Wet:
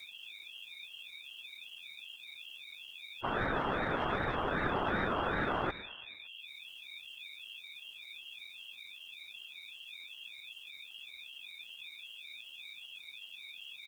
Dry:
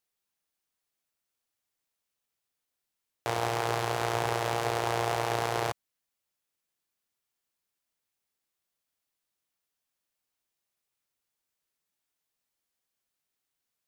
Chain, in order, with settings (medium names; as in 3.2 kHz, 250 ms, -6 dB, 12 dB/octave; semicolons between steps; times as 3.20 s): spectral gate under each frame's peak -10 dB strong; waveshaping leveller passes 1; peak limiter -22.5 dBFS, peak gain reduction 5 dB; upward compressor, threshold -44 dBFS; pitch shift +4 st; frequency-shifting echo 113 ms, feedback 59%, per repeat +91 Hz, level -18 dB; whistle 3 kHz -45 dBFS; whisper effect; ring modulator with a swept carrier 460 Hz, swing 60%, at 2.6 Hz; trim +1.5 dB